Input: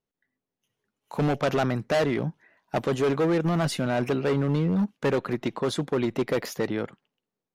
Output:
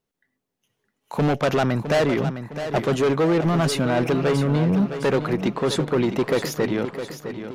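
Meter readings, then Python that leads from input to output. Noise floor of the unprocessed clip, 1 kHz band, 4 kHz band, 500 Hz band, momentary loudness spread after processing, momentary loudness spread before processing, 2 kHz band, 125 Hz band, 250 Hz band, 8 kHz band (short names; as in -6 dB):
under -85 dBFS, +4.5 dB, +5.5 dB, +4.5 dB, 7 LU, 6 LU, +4.5 dB, +4.5 dB, +4.5 dB, +6.0 dB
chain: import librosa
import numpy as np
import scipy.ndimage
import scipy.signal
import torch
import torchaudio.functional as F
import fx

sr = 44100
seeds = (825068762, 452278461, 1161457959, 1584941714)

p1 = 10.0 ** (-20.0 / 20.0) * np.tanh(x / 10.0 ** (-20.0 / 20.0))
p2 = p1 + fx.echo_feedback(p1, sr, ms=660, feedback_pct=47, wet_db=-10, dry=0)
y = F.gain(torch.from_numpy(p2), 6.0).numpy()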